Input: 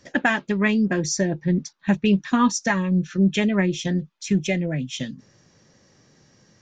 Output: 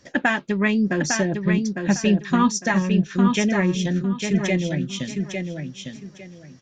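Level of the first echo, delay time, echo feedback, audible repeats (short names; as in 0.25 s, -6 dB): -5.5 dB, 0.854 s, 23%, 3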